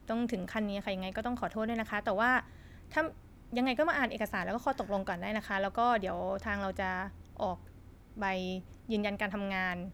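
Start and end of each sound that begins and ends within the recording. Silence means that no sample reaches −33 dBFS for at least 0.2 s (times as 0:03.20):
0:02.97–0:03.08
0:03.53–0:07.07
0:07.40–0:07.54
0:08.19–0:08.57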